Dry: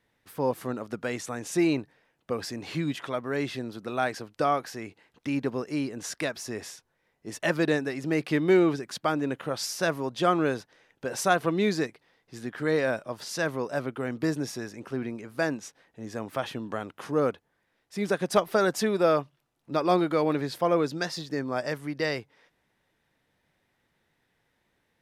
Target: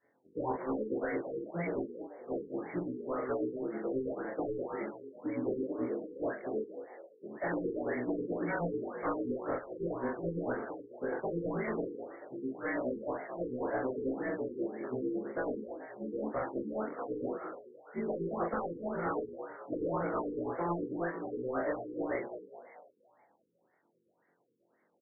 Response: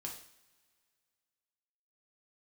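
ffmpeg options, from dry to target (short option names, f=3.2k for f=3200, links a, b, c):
-filter_complex "[0:a]afftfilt=real='re':imag='-im':win_size=2048:overlap=0.75,highpass=250,afftfilt=real='re*lt(hypot(re,im),0.158)':imag='im*lt(hypot(re,im),0.158)':win_size=1024:overlap=0.75,equalizer=f=410:w=0.56:g=4.5,asoftclip=type=tanh:threshold=-30dB,asplit=7[a][b][c][d][e][f][g];[b]adelay=215,afreqshift=59,volume=-9.5dB[h];[c]adelay=430,afreqshift=118,volume=-15.5dB[i];[d]adelay=645,afreqshift=177,volume=-21.5dB[j];[e]adelay=860,afreqshift=236,volume=-27.6dB[k];[f]adelay=1075,afreqshift=295,volume=-33.6dB[l];[g]adelay=1290,afreqshift=354,volume=-39.6dB[m];[a][h][i][j][k][l][m]amix=inputs=7:normalize=0,volume=32dB,asoftclip=hard,volume=-32dB,acrossover=split=1700[n][o];[n]aeval=exprs='val(0)*(1-0.7/2+0.7/2*cos(2*PI*9.2*n/s))':c=same[p];[o]aeval=exprs='val(0)*(1-0.7/2-0.7/2*cos(2*PI*9.2*n/s))':c=same[q];[p][q]amix=inputs=2:normalize=0,equalizer=f=5.9k:w=2.6:g=2,asplit=2[r][s];[s]adelay=41,volume=-3dB[t];[r][t]amix=inputs=2:normalize=0,afftfilt=real='re*lt(b*sr/1024,490*pow(2300/490,0.5+0.5*sin(2*PI*1.9*pts/sr)))':imag='im*lt(b*sr/1024,490*pow(2300/490,0.5+0.5*sin(2*PI*1.9*pts/sr)))':win_size=1024:overlap=0.75,volume=5dB"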